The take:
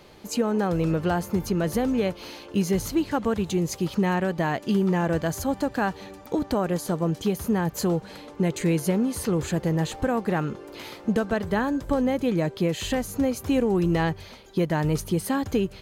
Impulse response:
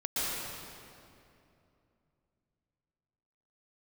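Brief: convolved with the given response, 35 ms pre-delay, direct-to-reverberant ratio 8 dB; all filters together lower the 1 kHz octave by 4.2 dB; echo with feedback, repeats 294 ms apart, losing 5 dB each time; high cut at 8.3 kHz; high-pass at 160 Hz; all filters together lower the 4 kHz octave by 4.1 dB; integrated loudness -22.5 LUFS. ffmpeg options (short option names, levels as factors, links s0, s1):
-filter_complex "[0:a]highpass=160,lowpass=8300,equalizer=f=1000:t=o:g=-5.5,equalizer=f=4000:t=o:g=-5,aecho=1:1:294|588|882|1176|1470|1764|2058:0.562|0.315|0.176|0.0988|0.0553|0.031|0.0173,asplit=2[s0][s1];[1:a]atrim=start_sample=2205,adelay=35[s2];[s1][s2]afir=irnorm=-1:irlink=0,volume=0.15[s3];[s0][s3]amix=inputs=2:normalize=0,volume=1.33"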